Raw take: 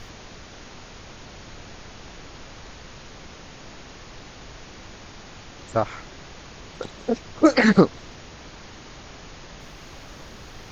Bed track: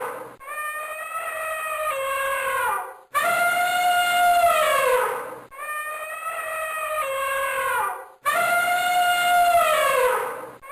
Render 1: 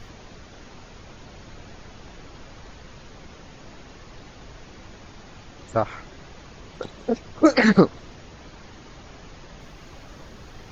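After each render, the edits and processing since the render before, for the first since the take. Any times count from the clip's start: denoiser 6 dB, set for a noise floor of -44 dBFS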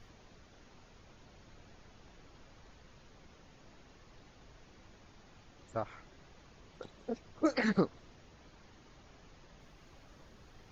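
gain -14.5 dB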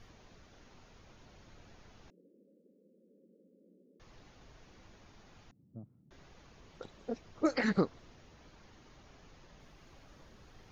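2.1–4 Chebyshev band-pass 180–550 Hz, order 5; 5.51–6.11 Butterworth band-pass 170 Hz, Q 1.3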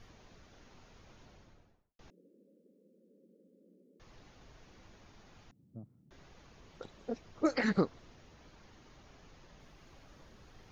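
1.2–1.99 studio fade out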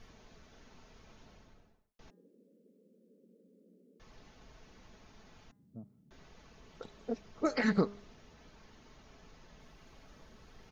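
comb 4.6 ms, depth 32%; de-hum 203.1 Hz, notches 10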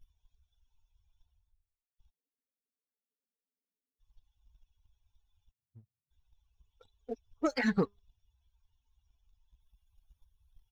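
per-bin expansion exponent 2; sample leveller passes 1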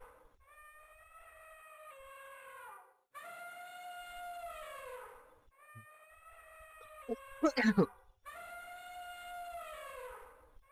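add bed track -28.5 dB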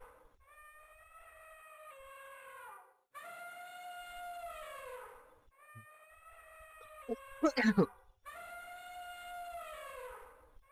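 nothing audible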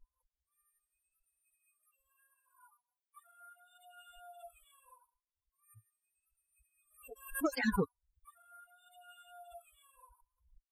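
per-bin expansion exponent 3; backwards sustainer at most 120 dB/s

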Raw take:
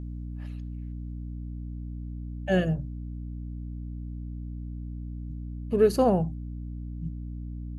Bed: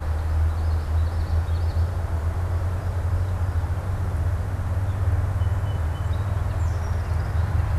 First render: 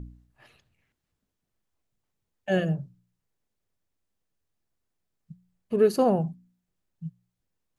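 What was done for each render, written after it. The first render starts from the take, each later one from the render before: de-hum 60 Hz, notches 5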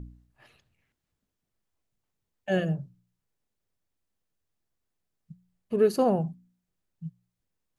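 gain -1.5 dB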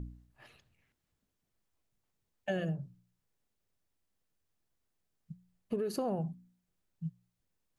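limiter -19 dBFS, peak gain reduction 7.5 dB; compressor 6:1, threshold -31 dBFS, peak gain reduction 8.5 dB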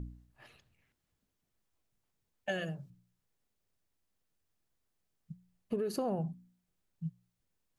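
2.49–2.9 tilt shelf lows -6 dB, about 790 Hz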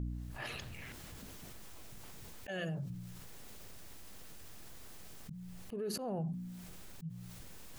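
auto swell 0.317 s; fast leveller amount 70%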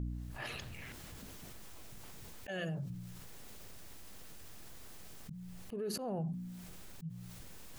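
nothing audible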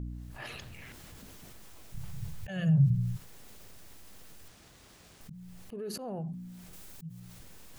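1.94–3.17 resonant low shelf 200 Hz +12.5 dB, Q 3; 4.48–5.21 running maximum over 3 samples; 6.73–7.2 high shelf 5700 Hz +7 dB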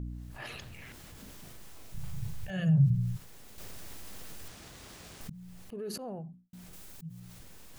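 1.16–2.6 doubler 37 ms -5.5 dB; 3.58–5.3 gain +7 dB; 5.95–6.53 studio fade out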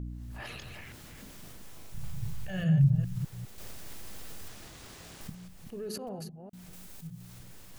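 reverse delay 0.203 s, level -7 dB

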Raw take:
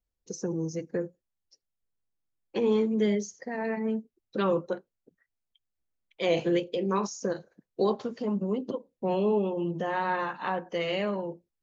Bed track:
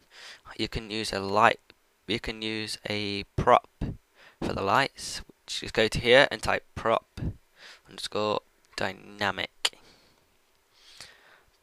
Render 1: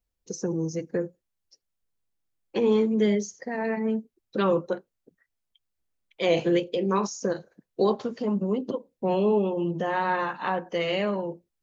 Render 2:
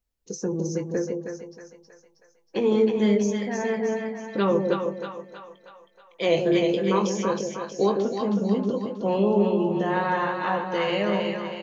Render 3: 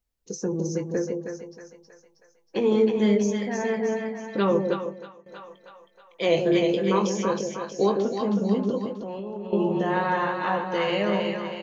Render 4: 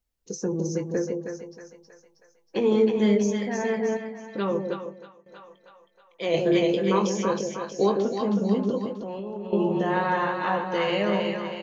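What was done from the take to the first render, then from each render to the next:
gain +3 dB
doubler 20 ms -9 dB; split-band echo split 670 Hz, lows 0.156 s, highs 0.318 s, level -4 dB
4.57–5.26 fade out, to -18 dB; 8.92–9.53 compressor 16:1, threshold -30 dBFS
3.97–6.34 gain -4.5 dB

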